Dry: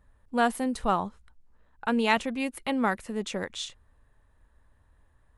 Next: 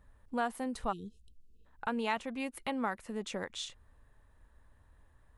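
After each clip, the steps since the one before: spectral delete 0.92–1.65, 480–2500 Hz; dynamic EQ 1000 Hz, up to +5 dB, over -38 dBFS, Q 0.8; compressor 2:1, threshold -40 dBFS, peak gain reduction 13.5 dB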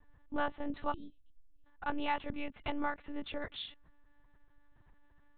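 monotone LPC vocoder at 8 kHz 290 Hz

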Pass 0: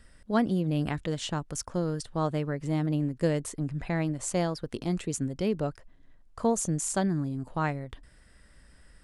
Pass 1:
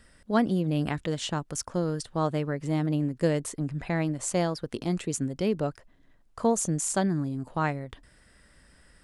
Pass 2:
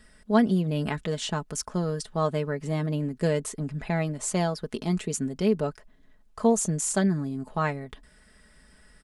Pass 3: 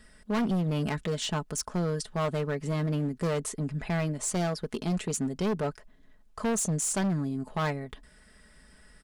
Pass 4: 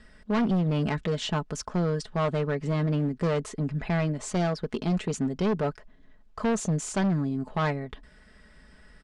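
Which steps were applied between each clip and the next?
low shelf 70 Hz -8.5 dB; gain +2 dB
comb 4.7 ms, depth 58%
hard clip -24.5 dBFS, distortion -8 dB
air absorption 100 m; gain +3 dB

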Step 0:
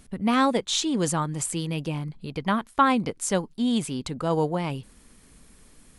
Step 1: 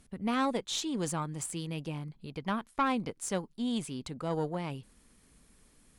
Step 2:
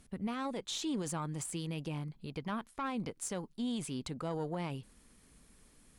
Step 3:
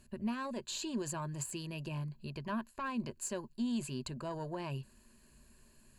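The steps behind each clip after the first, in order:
tube stage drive 12 dB, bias 0.4; gain -7 dB
limiter -28.5 dBFS, peak gain reduction 10.5 dB
ripple EQ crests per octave 1.4, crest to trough 12 dB; gain -2.5 dB

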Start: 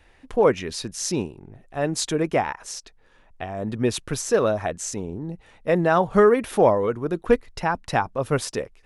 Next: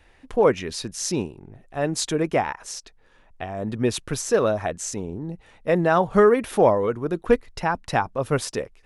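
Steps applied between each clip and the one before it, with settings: nothing audible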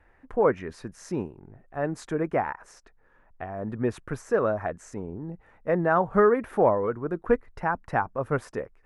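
resonant high shelf 2400 Hz -13.5 dB, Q 1.5; gain -4.5 dB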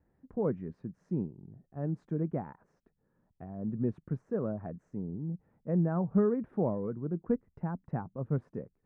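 band-pass 170 Hz, Q 1.8; gain +2.5 dB

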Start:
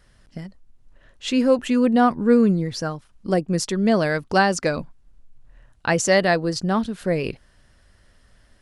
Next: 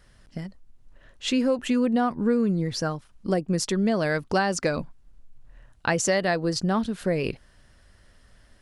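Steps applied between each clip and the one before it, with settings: compressor 4:1, threshold -20 dBFS, peak gain reduction 8 dB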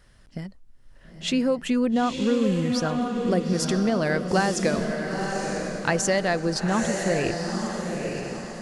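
diffused feedback echo 0.927 s, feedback 43%, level -4 dB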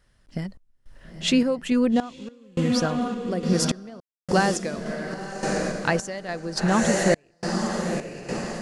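random-step tremolo, depth 100%; gain +4.5 dB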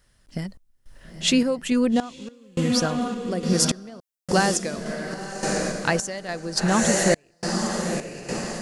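high shelf 5100 Hz +9 dB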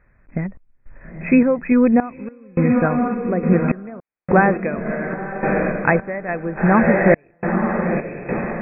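brick-wall FIR low-pass 2600 Hz; gain +6.5 dB

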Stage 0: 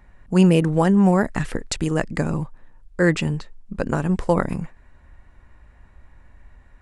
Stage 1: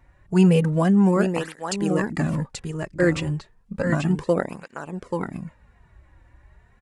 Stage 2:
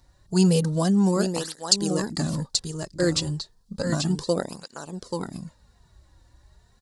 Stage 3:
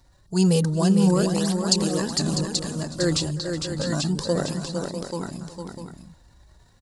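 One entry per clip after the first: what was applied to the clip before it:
on a send: echo 0.834 s -5.5 dB; on the sum: tape flanging out of phase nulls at 0.32 Hz, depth 4.9 ms
resonant high shelf 3200 Hz +11 dB, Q 3; gain -3 dB
transient shaper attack -2 dB, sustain +5 dB; tapped delay 0.37/0.456/0.649 s -19/-6/-10 dB

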